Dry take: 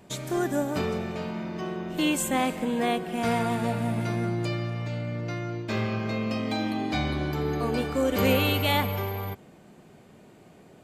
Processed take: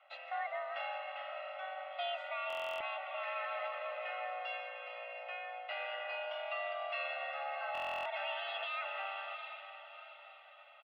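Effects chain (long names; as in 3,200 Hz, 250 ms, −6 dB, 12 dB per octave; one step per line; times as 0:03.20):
single-sideband voice off tune +390 Hz 160–2,500 Hz
first difference
on a send: feedback delay with all-pass diffusion 728 ms, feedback 41%, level −13 dB
on the sum: brickwall limiter −36.5 dBFS, peak gain reduction 9.5 dB
comb filter 1.5 ms, depth 89%
buffer that repeats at 0:02.48/0:07.73, samples 1,024, times 13
level +3.5 dB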